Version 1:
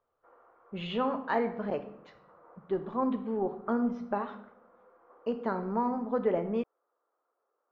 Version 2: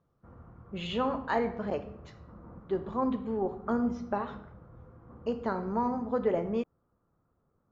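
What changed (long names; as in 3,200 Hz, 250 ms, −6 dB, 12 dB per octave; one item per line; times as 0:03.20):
background: remove inverse Chebyshev high-pass filter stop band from 170 Hz, stop band 50 dB
master: remove low-pass filter 3,600 Hz 12 dB per octave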